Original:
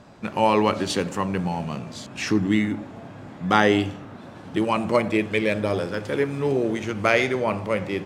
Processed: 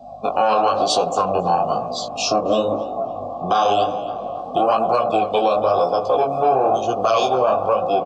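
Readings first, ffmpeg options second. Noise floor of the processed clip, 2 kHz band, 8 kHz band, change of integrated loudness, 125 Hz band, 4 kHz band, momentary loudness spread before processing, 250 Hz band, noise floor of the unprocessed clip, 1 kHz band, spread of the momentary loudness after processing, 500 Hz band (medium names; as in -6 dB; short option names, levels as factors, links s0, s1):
-30 dBFS, -7.5 dB, +6.0 dB, +4.0 dB, -5.5 dB, +5.0 dB, 14 LU, -5.0 dB, -42 dBFS, +9.5 dB, 8 LU, +6.0 dB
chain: -filter_complex "[0:a]asuperstop=centerf=2000:order=4:qfactor=0.64,acrossover=split=150|1500[s0][s1][s2];[s1]aeval=exprs='max(val(0),0)':c=same[s3];[s2]highshelf=f=2700:g=12[s4];[s0][s3][s4]amix=inputs=3:normalize=0,aeval=exprs='val(0)+0.01*(sin(2*PI*50*n/s)+sin(2*PI*2*50*n/s)/2+sin(2*PI*3*50*n/s)/3+sin(2*PI*4*50*n/s)/4+sin(2*PI*5*50*n/s)/5)':c=same,asplit=3[s5][s6][s7];[s5]bandpass=f=730:t=q:w=8,volume=1[s8];[s6]bandpass=f=1090:t=q:w=8,volume=0.501[s9];[s7]bandpass=f=2440:t=q:w=8,volume=0.355[s10];[s8][s9][s10]amix=inputs=3:normalize=0,afftdn=nr=18:nf=-60,adynamicequalizer=threshold=0.00178:dfrequency=510:dqfactor=4:tfrequency=510:tqfactor=4:attack=5:release=100:ratio=0.375:range=3.5:mode=boostabove:tftype=bell,acrossover=split=320|890[s11][s12][s13];[s11]acompressor=threshold=0.00282:ratio=4[s14];[s12]acompressor=threshold=0.00891:ratio=4[s15];[s14][s15][s13]amix=inputs=3:normalize=0,asplit=2[s16][s17];[s17]adelay=276,lowpass=f=3900:p=1,volume=0.112,asplit=2[s18][s19];[s19]adelay=276,lowpass=f=3900:p=1,volume=0.32,asplit=2[s20][s21];[s21]adelay=276,lowpass=f=3900:p=1,volume=0.32[s22];[s16][s18][s20][s22]amix=inputs=4:normalize=0,flanger=delay=16:depth=7.7:speed=1,asplit=2[s23][s24];[s24]acompressor=threshold=0.00251:ratio=6,volume=1.19[s25];[s23][s25]amix=inputs=2:normalize=0,alimiter=level_in=42.2:limit=0.891:release=50:level=0:latency=1,volume=0.447"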